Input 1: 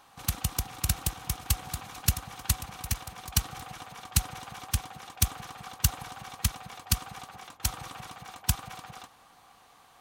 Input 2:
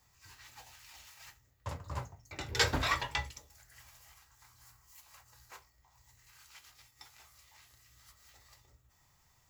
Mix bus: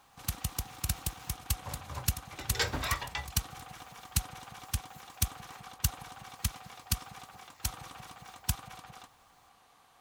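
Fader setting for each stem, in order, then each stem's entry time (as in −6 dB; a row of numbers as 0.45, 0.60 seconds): −5.0, −2.5 decibels; 0.00, 0.00 seconds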